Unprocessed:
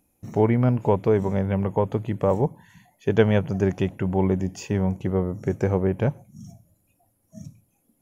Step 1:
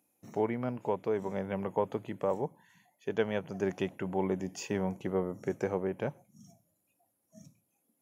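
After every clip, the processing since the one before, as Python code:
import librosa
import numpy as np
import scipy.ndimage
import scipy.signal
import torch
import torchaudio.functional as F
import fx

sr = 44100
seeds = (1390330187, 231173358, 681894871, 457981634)

y = scipy.signal.sosfilt(scipy.signal.butter(2, 140.0, 'highpass', fs=sr, output='sos'), x)
y = fx.low_shelf(y, sr, hz=210.0, db=-9.5)
y = fx.rider(y, sr, range_db=4, speed_s=0.5)
y = y * 10.0 ** (-6.5 / 20.0)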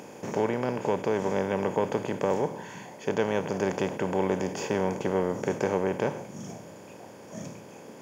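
y = fx.bin_compress(x, sr, power=0.4)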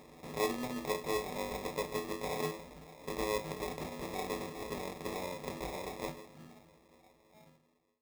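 y = fx.fade_out_tail(x, sr, length_s=2.52)
y = fx.stiff_resonator(y, sr, f0_hz=78.0, decay_s=0.39, stiffness=0.008)
y = fx.sample_hold(y, sr, seeds[0], rate_hz=1500.0, jitter_pct=0)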